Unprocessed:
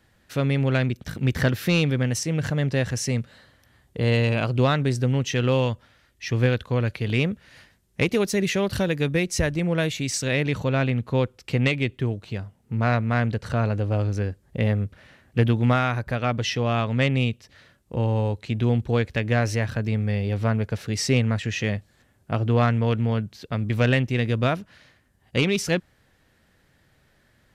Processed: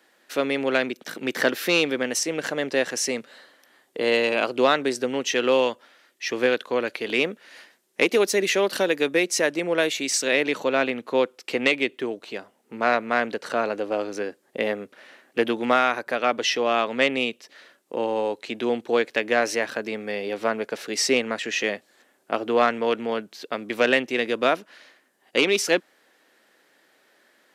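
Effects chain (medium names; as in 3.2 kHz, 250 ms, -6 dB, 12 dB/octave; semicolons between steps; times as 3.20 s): high-pass 300 Hz 24 dB/octave; trim +4 dB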